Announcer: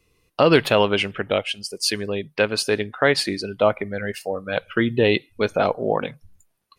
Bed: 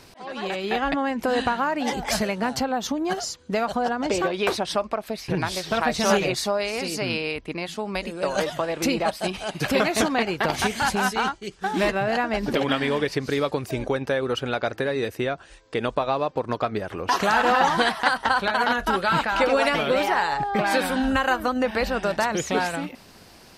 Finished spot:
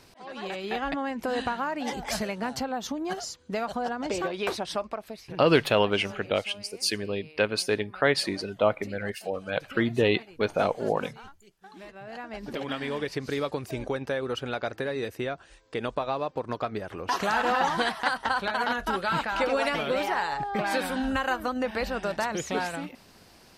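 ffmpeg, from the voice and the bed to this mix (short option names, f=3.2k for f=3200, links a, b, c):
-filter_complex "[0:a]adelay=5000,volume=-5dB[a];[1:a]volume=12dB,afade=t=out:st=4.82:d=0.72:silence=0.133352,afade=t=in:st=11.9:d=1.38:silence=0.125893[b];[a][b]amix=inputs=2:normalize=0"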